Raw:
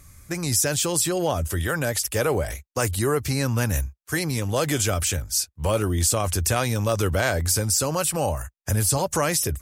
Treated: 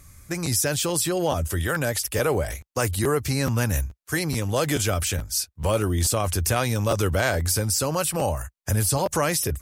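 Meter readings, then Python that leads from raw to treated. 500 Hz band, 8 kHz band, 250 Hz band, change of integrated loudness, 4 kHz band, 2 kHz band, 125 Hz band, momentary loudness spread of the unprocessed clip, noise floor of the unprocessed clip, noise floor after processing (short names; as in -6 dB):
0.0 dB, -2.0 dB, 0.0 dB, -0.5 dB, -0.5 dB, 0.0 dB, 0.0 dB, 6 LU, -58 dBFS, -58 dBFS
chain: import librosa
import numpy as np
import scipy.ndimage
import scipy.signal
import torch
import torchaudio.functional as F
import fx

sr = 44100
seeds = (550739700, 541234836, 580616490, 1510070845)

y = fx.dynamic_eq(x, sr, hz=7200.0, q=1.9, threshold_db=-34.0, ratio=4.0, max_db=-4)
y = fx.buffer_crackle(y, sr, first_s=0.45, period_s=0.43, block=512, kind='repeat')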